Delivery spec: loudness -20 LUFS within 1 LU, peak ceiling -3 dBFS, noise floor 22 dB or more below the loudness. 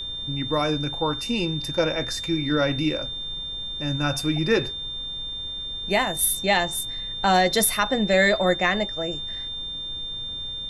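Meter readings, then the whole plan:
steady tone 3600 Hz; tone level -30 dBFS; noise floor -33 dBFS; noise floor target -46 dBFS; loudness -24.0 LUFS; peak -7.5 dBFS; loudness target -20.0 LUFS
-> notch 3600 Hz, Q 30; noise print and reduce 13 dB; gain +4 dB

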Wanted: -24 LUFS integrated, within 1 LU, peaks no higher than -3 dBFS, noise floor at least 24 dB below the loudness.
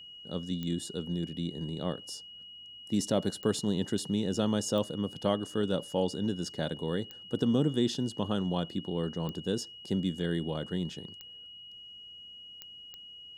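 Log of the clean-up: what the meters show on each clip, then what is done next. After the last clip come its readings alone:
clicks 8; steady tone 2900 Hz; tone level -46 dBFS; loudness -32.5 LUFS; peak -13.5 dBFS; loudness target -24.0 LUFS
-> de-click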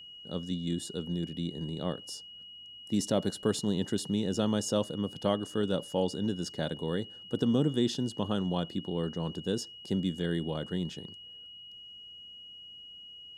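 clicks 0; steady tone 2900 Hz; tone level -46 dBFS
-> notch 2900 Hz, Q 30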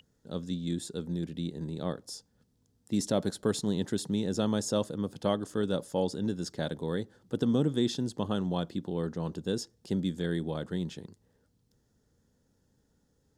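steady tone none; loudness -32.5 LUFS; peak -13.5 dBFS; loudness target -24.0 LUFS
-> gain +8.5 dB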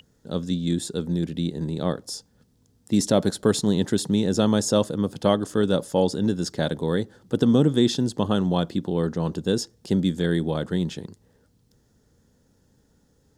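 loudness -24.0 LUFS; peak -5.0 dBFS; noise floor -64 dBFS

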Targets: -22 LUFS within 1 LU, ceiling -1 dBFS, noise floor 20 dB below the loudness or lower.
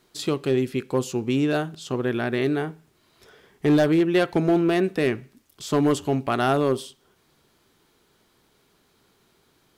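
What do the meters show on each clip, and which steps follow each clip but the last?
clipped 0.7%; flat tops at -13.5 dBFS; loudness -23.5 LUFS; peak -13.5 dBFS; loudness target -22.0 LUFS
-> clip repair -13.5 dBFS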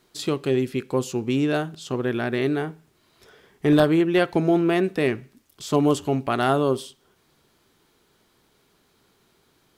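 clipped 0.0%; loudness -23.0 LUFS; peak -4.5 dBFS; loudness target -22.0 LUFS
-> gain +1 dB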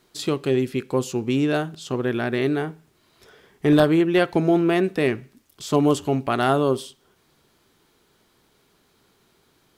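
loudness -22.0 LUFS; peak -3.5 dBFS; noise floor -63 dBFS

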